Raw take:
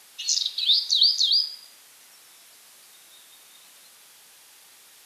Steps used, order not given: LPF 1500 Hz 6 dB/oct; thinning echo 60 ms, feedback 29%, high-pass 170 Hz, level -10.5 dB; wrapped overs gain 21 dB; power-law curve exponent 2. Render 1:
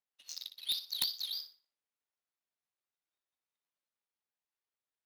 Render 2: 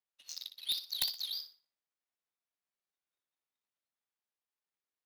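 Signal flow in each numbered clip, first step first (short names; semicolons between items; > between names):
LPF > power-law curve > thinning echo > wrapped overs; LPF > power-law curve > wrapped overs > thinning echo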